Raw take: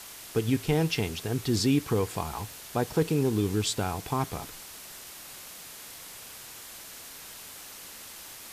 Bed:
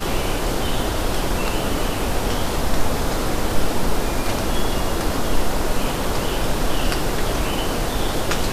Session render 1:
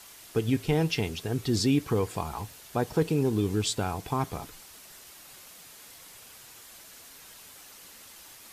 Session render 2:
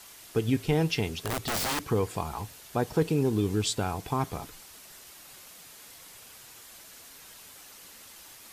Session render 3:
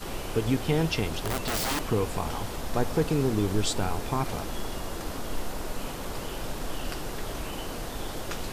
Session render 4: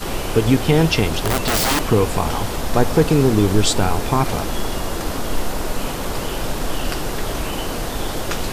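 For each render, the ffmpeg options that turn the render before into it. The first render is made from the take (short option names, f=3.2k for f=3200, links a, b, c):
-af "afftdn=nr=6:nf=-45"
-filter_complex "[0:a]asettb=1/sr,asplit=3[a][b][c];[a]atrim=end=1.244[d];[b]atrim=start=1.24:end=1.84,asetpts=PTS-STARTPTS,afade=t=in:d=0.004:c=qsin,afade=t=out:st=0.596:d=0.004:c=qsin,aeval=exprs='(mod(16.8*val(0)+1,2)-1)/16.8':c=same[e];[c]atrim=start=1.836[f];[d][e]acrossfade=d=0.004:c1=hsin:c2=qsin[g];[g][f]acrossfade=d=0.004:c1=qsin:c2=hsin"
-filter_complex "[1:a]volume=-13dB[a];[0:a][a]amix=inputs=2:normalize=0"
-af "volume=10.5dB,alimiter=limit=-2dB:level=0:latency=1"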